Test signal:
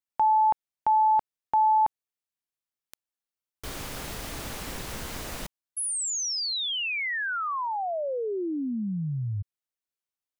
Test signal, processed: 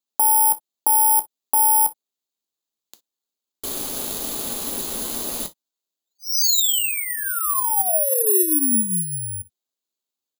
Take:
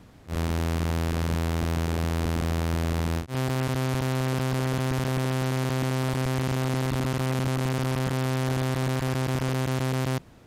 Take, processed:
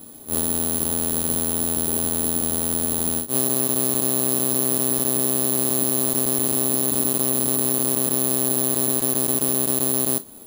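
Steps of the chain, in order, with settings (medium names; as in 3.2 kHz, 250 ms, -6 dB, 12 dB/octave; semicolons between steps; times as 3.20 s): graphic EQ 125/250/500/1000/2000/4000 Hz -6/+10/+5/+3/-6/+11 dB; resampled via 16 kHz; bass shelf 72 Hz -6.5 dB; compression, threshold -22 dBFS; gated-style reverb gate 80 ms falling, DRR 8.5 dB; careless resampling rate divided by 4×, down filtered, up zero stuff; trim -1 dB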